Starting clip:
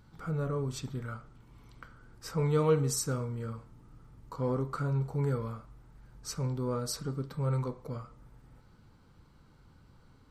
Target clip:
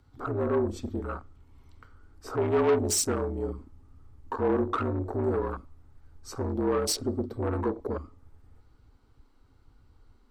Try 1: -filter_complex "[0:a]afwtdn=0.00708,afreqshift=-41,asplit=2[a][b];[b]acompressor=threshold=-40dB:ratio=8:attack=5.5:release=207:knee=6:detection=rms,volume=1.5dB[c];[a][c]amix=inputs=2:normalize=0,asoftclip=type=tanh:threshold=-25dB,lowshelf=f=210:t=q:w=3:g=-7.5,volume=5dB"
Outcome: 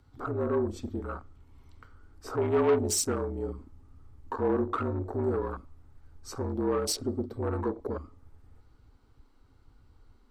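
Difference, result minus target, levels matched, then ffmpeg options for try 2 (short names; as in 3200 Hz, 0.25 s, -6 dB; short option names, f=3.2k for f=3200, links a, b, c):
compressor: peak gain reduction +9.5 dB
-filter_complex "[0:a]afwtdn=0.00708,afreqshift=-41,asplit=2[a][b];[b]acompressor=threshold=-29dB:ratio=8:attack=5.5:release=207:knee=6:detection=rms,volume=1.5dB[c];[a][c]amix=inputs=2:normalize=0,asoftclip=type=tanh:threshold=-25dB,lowshelf=f=210:t=q:w=3:g=-7.5,volume=5dB"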